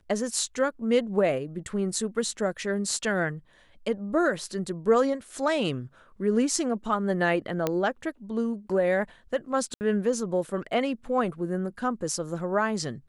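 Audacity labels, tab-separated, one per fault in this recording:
7.670000	7.670000	click −11 dBFS
9.740000	9.810000	drop-out 69 ms

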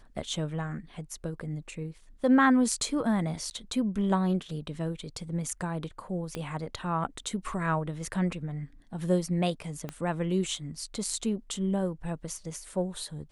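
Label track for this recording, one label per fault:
3.500000	3.510000	drop-out 9.7 ms
6.350000	6.350000	click −20 dBFS
9.890000	9.890000	click −21 dBFS

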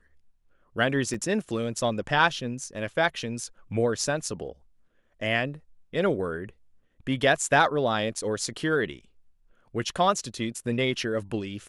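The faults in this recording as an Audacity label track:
1.140000	1.140000	drop-out 4.4 ms

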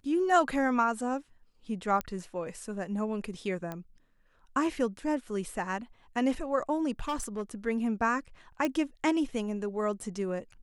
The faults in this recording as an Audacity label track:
2.010000	2.010000	click −17 dBFS
3.720000	3.720000	click −23 dBFS
6.990000	7.420000	clipping −28.5 dBFS
8.650000	8.650000	click −16 dBFS

